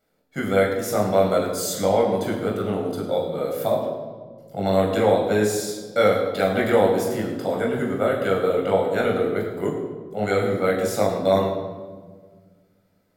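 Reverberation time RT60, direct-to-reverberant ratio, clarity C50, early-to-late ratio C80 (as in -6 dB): 1.5 s, -3.0 dB, 4.5 dB, 5.5 dB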